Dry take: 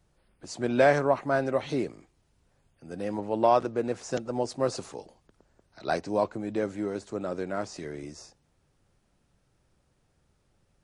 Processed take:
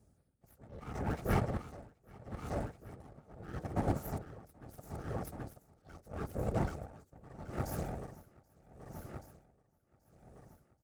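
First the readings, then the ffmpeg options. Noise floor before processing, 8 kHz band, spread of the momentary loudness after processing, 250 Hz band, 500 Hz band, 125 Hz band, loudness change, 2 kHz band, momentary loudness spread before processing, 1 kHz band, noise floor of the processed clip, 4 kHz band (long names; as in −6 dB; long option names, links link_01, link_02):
−70 dBFS, −10.5 dB, 20 LU, −9.0 dB, −15.5 dB, +0.5 dB, −11.5 dB, −14.5 dB, 17 LU, −13.0 dB, −74 dBFS, −14.5 dB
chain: -af "bass=frequency=250:gain=6,treble=frequency=4000:gain=4,bandreject=frequency=50:width_type=h:width=6,bandreject=frequency=100:width_type=h:width=6,bandreject=frequency=150:width_type=h:width=6,bandreject=frequency=200:width_type=h:width=6,aeval=exprs='abs(val(0))':channel_layout=same,equalizer=frequency=3000:width=0.64:gain=-13.5,alimiter=limit=-19dB:level=0:latency=1:release=60,afftfilt=real='hypot(re,im)*cos(2*PI*random(0))':imag='hypot(re,im)*sin(2*PI*random(1))':win_size=512:overlap=0.75,aeval=exprs='0.0944*(cos(1*acos(clip(val(0)/0.0944,-1,1)))-cos(1*PI/2))+0.00841*(cos(8*acos(clip(val(0)/0.0944,-1,1)))-cos(8*PI/2))':channel_layout=same,highpass=60,bandreject=frequency=1000:width=5.7,aecho=1:1:780|1560|2340|3120|3900|4680:0.447|0.214|0.103|0.0494|0.0237|0.0114,aeval=exprs='val(0)*pow(10,-24*(0.5-0.5*cos(2*PI*0.77*n/s))/20)':channel_layout=same,volume=7.5dB"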